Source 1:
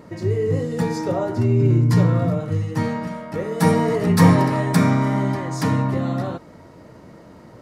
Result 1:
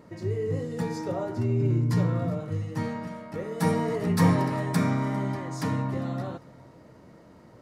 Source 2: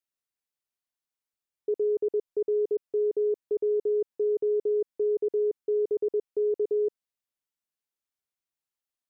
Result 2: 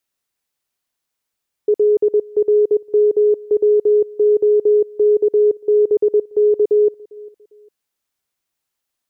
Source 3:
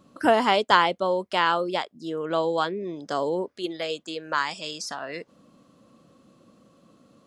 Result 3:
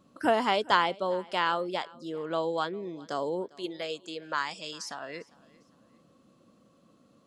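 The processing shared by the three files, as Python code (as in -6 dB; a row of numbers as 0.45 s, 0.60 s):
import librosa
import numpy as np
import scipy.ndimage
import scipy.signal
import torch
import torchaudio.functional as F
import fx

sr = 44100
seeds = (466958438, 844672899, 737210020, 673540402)

y = fx.echo_feedback(x, sr, ms=401, feedback_pct=33, wet_db=-23.5)
y = librosa.util.normalize(y) * 10.0 ** (-9 / 20.0)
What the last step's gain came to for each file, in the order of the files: -8.0 dB, +12.0 dB, -5.5 dB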